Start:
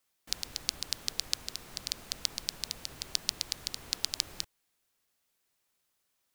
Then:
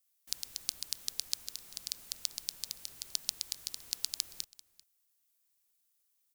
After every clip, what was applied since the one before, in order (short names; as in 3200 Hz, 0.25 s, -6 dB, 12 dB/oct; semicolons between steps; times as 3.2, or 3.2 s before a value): pre-emphasis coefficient 0.8; echo 0.392 s -21.5 dB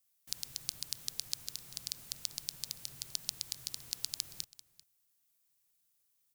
bell 130 Hz +13.5 dB 0.81 oct; in parallel at -0.5 dB: limiter -16 dBFS, peak gain reduction 8.5 dB; on the sum: gain -5.5 dB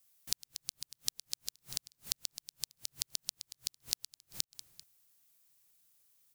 flipped gate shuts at -17 dBFS, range -35 dB; gain +6.5 dB